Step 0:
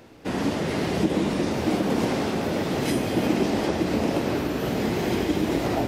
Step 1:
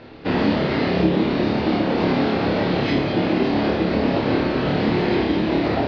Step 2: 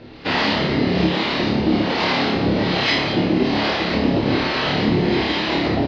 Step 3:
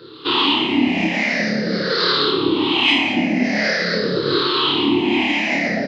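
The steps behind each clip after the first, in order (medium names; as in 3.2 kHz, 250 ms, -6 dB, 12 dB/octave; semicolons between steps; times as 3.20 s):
elliptic low-pass 4.5 kHz, stop band 70 dB; gain riding within 4 dB 0.5 s; flutter echo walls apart 4.8 m, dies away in 0.39 s; trim +3.5 dB
harmonic tremolo 1.2 Hz, depth 70%, crossover 550 Hz; treble shelf 2.1 kHz +10.5 dB; doubling 29 ms -11 dB; trim +3 dB
drifting ripple filter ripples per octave 0.61, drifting -0.46 Hz, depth 20 dB; high-pass 250 Hz 12 dB/octave; peaking EQ 720 Hz -8 dB 1 oct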